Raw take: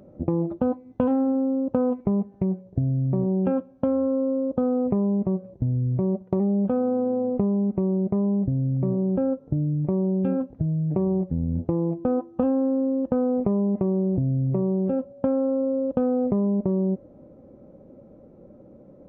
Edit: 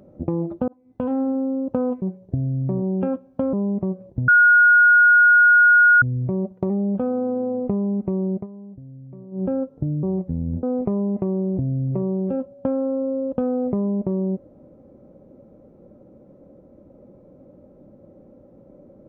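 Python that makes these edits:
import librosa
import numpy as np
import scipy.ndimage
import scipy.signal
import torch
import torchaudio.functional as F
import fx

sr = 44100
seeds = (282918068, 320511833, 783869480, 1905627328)

y = fx.edit(x, sr, fx.fade_in_span(start_s=0.68, length_s=0.51),
    fx.cut(start_s=2.02, length_s=0.44),
    fx.cut(start_s=3.97, length_s=1.0),
    fx.insert_tone(at_s=5.72, length_s=1.74, hz=1440.0, db=-9.5),
    fx.fade_down_up(start_s=8.05, length_s=1.08, db=-16.5, fade_s=0.12),
    fx.cut(start_s=9.73, length_s=1.32),
    fx.cut(start_s=11.65, length_s=1.57), tone=tone)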